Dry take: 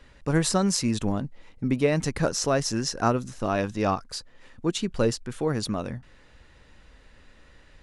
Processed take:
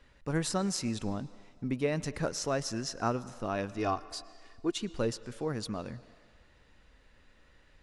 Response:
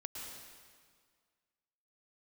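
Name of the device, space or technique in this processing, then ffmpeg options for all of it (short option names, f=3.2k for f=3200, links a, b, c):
filtered reverb send: -filter_complex "[0:a]asettb=1/sr,asplit=3[a][b][c];[a]atrim=end=3.784[d];[b]atrim=start=3.78:end=4.79,asetpts=PTS-STARTPTS,afade=t=in:d=0.004:c=qsin,afade=t=out:st=1.006:d=0.004:c=qsin,aecho=1:1:2.8:0.62,atrim=end_sample=44541[e];[c]atrim=start=4.786[f];[d][e]acrossfade=d=0.004:c1=hsin:c2=qsin[g];[g][f]acrossfade=d=0.004:c1=qsin:c2=hsin,asplit=2[h][i];[i]highpass=f=380:p=1,lowpass=6.4k[j];[1:a]atrim=start_sample=2205[k];[j][k]afir=irnorm=-1:irlink=0,volume=-11.5dB[l];[h][l]amix=inputs=2:normalize=0,volume=-8.5dB"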